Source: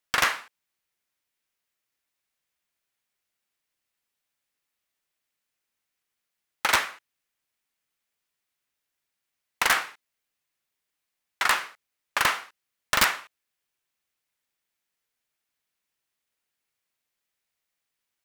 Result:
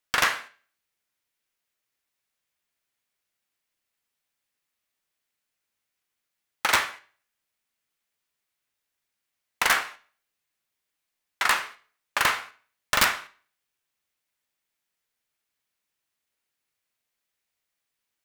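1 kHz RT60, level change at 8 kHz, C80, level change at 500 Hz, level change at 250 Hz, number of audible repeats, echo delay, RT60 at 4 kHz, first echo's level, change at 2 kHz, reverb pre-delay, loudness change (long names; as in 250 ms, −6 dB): 0.45 s, +0.5 dB, 21.5 dB, +0.5 dB, +0.5 dB, no echo audible, no echo audible, 0.40 s, no echo audible, +0.5 dB, 9 ms, 0.0 dB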